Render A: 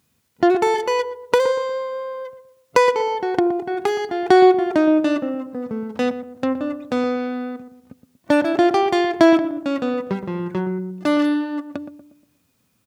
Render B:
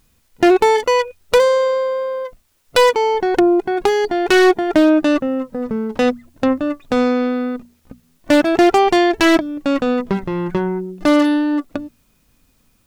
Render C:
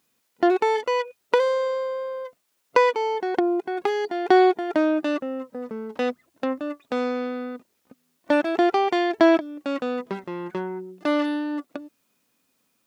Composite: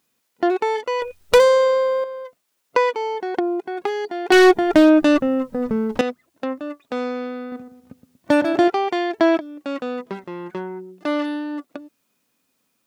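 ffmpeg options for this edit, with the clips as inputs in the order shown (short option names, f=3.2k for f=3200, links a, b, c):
-filter_complex "[1:a]asplit=2[a][b];[2:a]asplit=4[c][d][e][f];[c]atrim=end=1.022[g];[a]atrim=start=1.018:end=2.042[h];[d]atrim=start=2.038:end=4.322[i];[b]atrim=start=4.318:end=6.012[j];[e]atrim=start=6.008:end=7.522[k];[0:a]atrim=start=7.518:end=8.682[l];[f]atrim=start=8.678[m];[g][h]acrossfade=d=0.004:c1=hsin:c2=hsin[n];[n][i]acrossfade=d=0.004:c1=hsin:c2=hsin[o];[o][j]acrossfade=d=0.004:c1=hsin:c2=hsin[p];[p][k]acrossfade=d=0.004:c1=hsin:c2=hsin[q];[q][l]acrossfade=d=0.004:c1=hsin:c2=hsin[r];[r][m]acrossfade=d=0.004:c1=hsin:c2=hsin"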